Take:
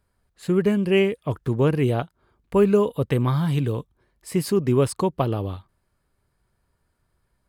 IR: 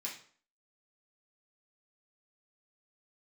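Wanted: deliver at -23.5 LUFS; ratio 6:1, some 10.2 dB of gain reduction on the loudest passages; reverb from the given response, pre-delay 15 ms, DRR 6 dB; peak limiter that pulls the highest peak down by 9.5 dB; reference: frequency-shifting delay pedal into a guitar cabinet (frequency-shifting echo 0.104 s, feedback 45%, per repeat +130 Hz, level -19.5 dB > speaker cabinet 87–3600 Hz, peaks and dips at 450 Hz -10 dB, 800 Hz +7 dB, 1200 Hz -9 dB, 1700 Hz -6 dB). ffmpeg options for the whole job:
-filter_complex "[0:a]acompressor=threshold=-25dB:ratio=6,alimiter=limit=-23.5dB:level=0:latency=1,asplit=2[a][b];[1:a]atrim=start_sample=2205,adelay=15[c];[b][c]afir=irnorm=-1:irlink=0,volume=-6dB[d];[a][d]amix=inputs=2:normalize=0,asplit=4[e][f][g][h];[f]adelay=104,afreqshift=130,volume=-19.5dB[i];[g]adelay=208,afreqshift=260,volume=-26.4dB[j];[h]adelay=312,afreqshift=390,volume=-33.4dB[k];[e][i][j][k]amix=inputs=4:normalize=0,highpass=87,equalizer=f=450:t=q:w=4:g=-10,equalizer=f=800:t=q:w=4:g=7,equalizer=f=1.2k:t=q:w=4:g=-9,equalizer=f=1.7k:t=q:w=4:g=-6,lowpass=f=3.6k:w=0.5412,lowpass=f=3.6k:w=1.3066,volume=11dB"

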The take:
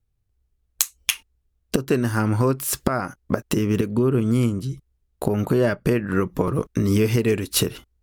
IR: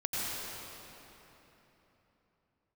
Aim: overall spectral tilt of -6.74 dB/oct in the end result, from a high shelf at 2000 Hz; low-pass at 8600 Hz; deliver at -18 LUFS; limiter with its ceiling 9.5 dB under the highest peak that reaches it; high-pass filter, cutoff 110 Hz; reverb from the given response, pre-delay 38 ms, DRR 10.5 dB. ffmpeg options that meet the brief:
-filter_complex "[0:a]highpass=110,lowpass=8.6k,highshelf=f=2k:g=-6,alimiter=limit=-13dB:level=0:latency=1,asplit=2[a][b];[1:a]atrim=start_sample=2205,adelay=38[c];[b][c]afir=irnorm=-1:irlink=0,volume=-17.5dB[d];[a][d]amix=inputs=2:normalize=0,volume=7.5dB"

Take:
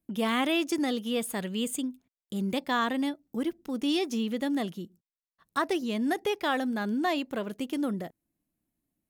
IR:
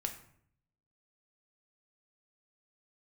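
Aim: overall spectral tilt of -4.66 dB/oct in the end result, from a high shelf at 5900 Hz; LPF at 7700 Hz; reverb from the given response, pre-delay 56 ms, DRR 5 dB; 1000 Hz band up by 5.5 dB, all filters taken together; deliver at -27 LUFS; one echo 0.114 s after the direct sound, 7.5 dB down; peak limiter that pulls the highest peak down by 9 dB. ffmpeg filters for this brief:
-filter_complex "[0:a]lowpass=7.7k,equalizer=f=1k:t=o:g=7,highshelf=f=5.9k:g=4,alimiter=limit=-20.5dB:level=0:latency=1,aecho=1:1:114:0.422,asplit=2[a][b];[1:a]atrim=start_sample=2205,adelay=56[c];[b][c]afir=irnorm=-1:irlink=0,volume=-5.5dB[d];[a][d]amix=inputs=2:normalize=0,volume=1.5dB"

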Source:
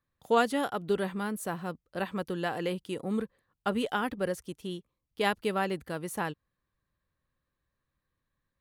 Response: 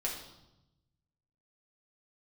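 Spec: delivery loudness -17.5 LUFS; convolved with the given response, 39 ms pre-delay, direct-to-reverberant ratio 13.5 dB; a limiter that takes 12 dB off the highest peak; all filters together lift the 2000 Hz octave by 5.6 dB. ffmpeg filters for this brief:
-filter_complex "[0:a]equalizer=f=2k:t=o:g=7.5,alimiter=limit=-21.5dB:level=0:latency=1,asplit=2[a][b];[1:a]atrim=start_sample=2205,adelay=39[c];[b][c]afir=irnorm=-1:irlink=0,volume=-16.5dB[d];[a][d]amix=inputs=2:normalize=0,volume=16.5dB"

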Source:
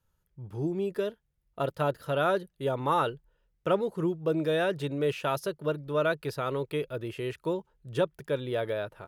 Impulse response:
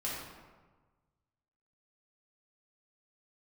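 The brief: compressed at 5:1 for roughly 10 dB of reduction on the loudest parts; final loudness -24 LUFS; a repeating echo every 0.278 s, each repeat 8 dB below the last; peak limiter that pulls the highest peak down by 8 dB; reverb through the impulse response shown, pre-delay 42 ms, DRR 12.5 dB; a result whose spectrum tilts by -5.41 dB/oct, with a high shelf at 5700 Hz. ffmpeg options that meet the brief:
-filter_complex "[0:a]highshelf=f=5.7k:g=3.5,acompressor=threshold=-33dB:ratio=5,alimiter=level_in=5dB:limit=-24dB:level=0:latency=1,volume=-5dB,aecho=1:1:278|556|834|1112|1390:0.398|0.159|0.0637|0.0255|0.0102,asplit=2[a][b];[1:a]atrim=start_sample=2205,adelay=42[c];[b][c]afir=irnorm=-1:irlink=0,volume=-16.5dB[d];[a][d]amix=inputs=2:normalize=0,volume=14.5dB"

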